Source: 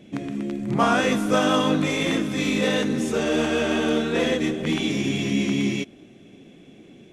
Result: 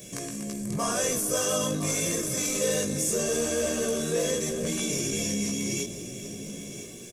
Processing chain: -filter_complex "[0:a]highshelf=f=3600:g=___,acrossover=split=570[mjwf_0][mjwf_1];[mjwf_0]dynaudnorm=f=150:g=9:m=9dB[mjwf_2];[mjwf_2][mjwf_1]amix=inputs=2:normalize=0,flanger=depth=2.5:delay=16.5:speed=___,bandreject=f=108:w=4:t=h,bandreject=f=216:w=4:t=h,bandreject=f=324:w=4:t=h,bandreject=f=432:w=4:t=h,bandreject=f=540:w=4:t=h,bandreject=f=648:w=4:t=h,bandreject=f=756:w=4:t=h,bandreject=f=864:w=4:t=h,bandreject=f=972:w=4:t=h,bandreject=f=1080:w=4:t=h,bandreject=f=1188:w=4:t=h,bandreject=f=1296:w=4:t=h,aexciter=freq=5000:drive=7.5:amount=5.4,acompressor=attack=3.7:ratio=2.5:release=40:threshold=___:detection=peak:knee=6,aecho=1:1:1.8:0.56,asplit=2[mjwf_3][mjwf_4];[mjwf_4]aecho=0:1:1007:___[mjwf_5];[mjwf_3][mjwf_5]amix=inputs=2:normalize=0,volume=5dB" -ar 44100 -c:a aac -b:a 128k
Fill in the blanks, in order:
7.5, 0.83, -39dB, 0.237